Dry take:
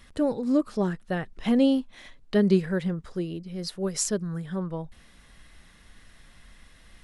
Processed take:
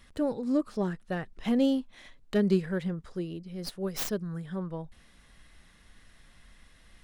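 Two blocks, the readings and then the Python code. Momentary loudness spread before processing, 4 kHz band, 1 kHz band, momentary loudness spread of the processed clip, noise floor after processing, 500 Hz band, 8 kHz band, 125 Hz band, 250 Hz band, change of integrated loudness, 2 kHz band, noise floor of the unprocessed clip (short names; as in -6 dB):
12 LU, -4.5 dB, -3.5 dB, 12 LU, -59 dBFS, -4.0 dB, -11.0 dB, -4.0 dB, -4.0 dB, -4.0 dB, -3.5 dB, -55 dBFS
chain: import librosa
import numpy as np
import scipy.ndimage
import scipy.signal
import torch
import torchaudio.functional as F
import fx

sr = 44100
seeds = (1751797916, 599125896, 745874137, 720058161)

y = fx.tracing_dist(x, sr, depth_ms=0.19)
y = F.gain(torch.from_numpy(y), -4.0).numpy()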